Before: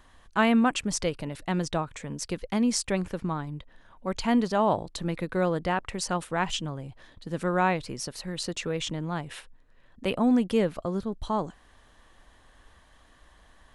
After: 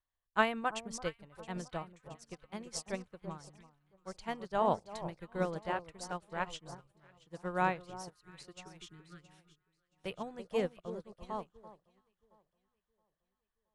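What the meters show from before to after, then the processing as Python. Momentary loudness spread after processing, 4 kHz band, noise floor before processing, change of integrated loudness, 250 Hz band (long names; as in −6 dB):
21 LU, −12.5 dB, −58 dBFS, −9.5 dB, −16.5 dB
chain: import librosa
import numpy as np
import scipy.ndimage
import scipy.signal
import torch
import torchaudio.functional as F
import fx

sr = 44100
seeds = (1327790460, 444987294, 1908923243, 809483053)

p1 = fx.spec_erase(x, sr, start_s=7.88, length_s=2.08, low_hz=460.0, high_hz=1200.0)
p2 = fx.peak_eq(p1, sr, hz=250.0, db=-13.5, octaves=0.34)
p3 = p2 + fx.echo_alternate(p2, sr, ms=336, hz=1200.0, feedback_pct=72, wet_db=-6, dry=0)
p4 = fx.upward_expand(p3, sr, threshold_db=-43.0, expansion=2.5)
y = F.gain(torch.from_numpy(p4), -2.5).numpy()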